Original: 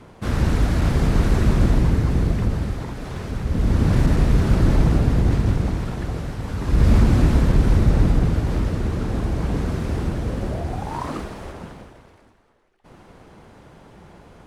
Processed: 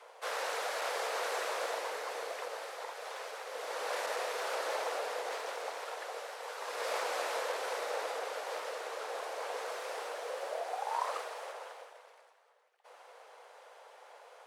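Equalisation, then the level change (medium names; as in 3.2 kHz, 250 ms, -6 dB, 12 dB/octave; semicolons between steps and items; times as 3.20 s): Chebyshev high-pass 480 Hz, order 5; -3.5 dB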